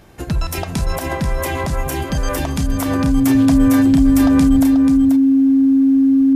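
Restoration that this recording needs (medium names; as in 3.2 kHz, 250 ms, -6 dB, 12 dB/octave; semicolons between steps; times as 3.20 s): band-stop 270 Hz, Q 30; inverse comb 486 ms -7.5 dB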